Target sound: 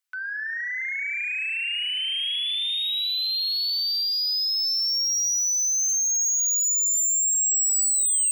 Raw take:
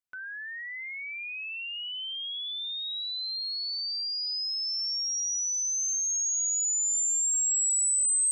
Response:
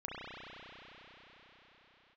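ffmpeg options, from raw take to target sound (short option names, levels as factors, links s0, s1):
-filter_complex "[0:a]highpass=1200,asoftclip=type=tanh:threshold=0.0335,asplit=2[s0][s1];[1:a]atrim=start_sample=2205[s2];[s1][s2]afir=irnorm=-1:irlink=0,volume=0.376[s3];[s0][s3]amix=inputs=2:normalize=0,volume=2.37"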